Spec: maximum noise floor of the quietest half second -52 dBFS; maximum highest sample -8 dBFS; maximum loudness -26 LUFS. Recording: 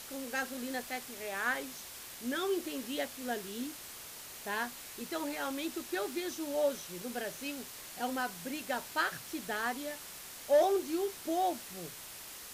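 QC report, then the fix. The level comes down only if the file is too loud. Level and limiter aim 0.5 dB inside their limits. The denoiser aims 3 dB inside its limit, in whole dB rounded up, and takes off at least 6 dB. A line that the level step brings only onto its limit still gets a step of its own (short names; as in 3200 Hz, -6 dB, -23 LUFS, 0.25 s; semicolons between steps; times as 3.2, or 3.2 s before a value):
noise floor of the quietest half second -48 dBFS: fail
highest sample -18.0 dBFS: OK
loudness -36.0 LUFS: OK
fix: denoiser 7 dB, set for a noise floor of -48 dBFS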